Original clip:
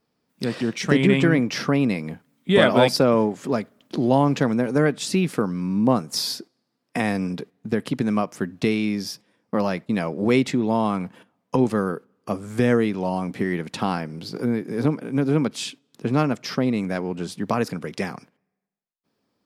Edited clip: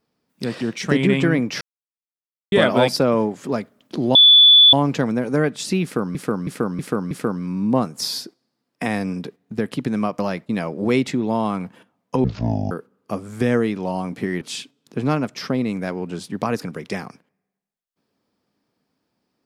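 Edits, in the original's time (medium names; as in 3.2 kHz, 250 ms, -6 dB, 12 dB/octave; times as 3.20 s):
1.61–2.52 s: mute
4.15 s: add tone 3.46 kHz -6.5 dBFS 0.58 s
5.25–5.57 s: loop, 5 plays
8.33–9.59 s: delete
11.64–11.89 s: speed 53%
13.59–15.49 s: delete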